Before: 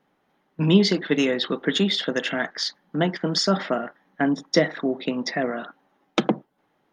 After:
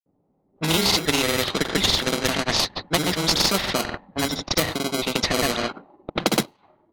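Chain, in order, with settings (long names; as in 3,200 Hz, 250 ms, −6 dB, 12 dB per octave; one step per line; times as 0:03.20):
in parallel at −4 dB: sample-rate reduction 1,800 Hz, jitter 0%
on the sum: thirty-one-band graphic EQ 100 Hz +8 dB, 1,600 Hz −7 dB, 4,000 Hz +10 dB, 8,000 Hz −3 dB
granular cloud 100 ms, grains 20 per second, pitch spread up and down by 0 semitones
low-pass that shuts in the quiet parts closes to 550 Hz, open at −18 dBFS
noise reduction from a noise print of the clip's start 10 dB
automatic gain control
every bin compressed towards the loudest bin 2 to 1
level −1 dB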